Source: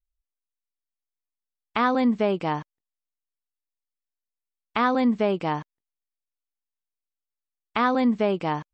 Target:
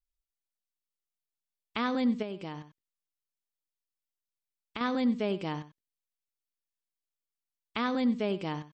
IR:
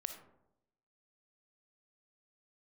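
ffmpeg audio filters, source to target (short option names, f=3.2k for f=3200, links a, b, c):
-filter_complex "[0:a]asplit=2[a][b];[b]adelay=93.29,volume=-15dB,highshelf=f=4k:g=-2.1[c];[a][c]amix=inputs=2:normalize=0,asettb=1/sr,asplit=3[d][e][f];[d]atrim=end=2.224[g];[e]atrim=start=2.22:end=4.81,asetpts=PTS-STARTPTS,afade=t=in:d=0.004:c=qsin,afade=t=out:st=2.586:d=0.004:c=qsin,acompressor=threshold=-29dB:ratio=3[h];[f]atrim=start=4.806[i];[g][h]acrossfade=d=0.004:c1=hsin:c2=qsin[j];[j][i]acrossfade=d=0.004:c1=qsin:c2=hsin,firequalizer=gain_entry='entry(300,0);entry(770,-7);entry(3200,3)':delay=0.05:min_phase=1,volume=-5.5dB"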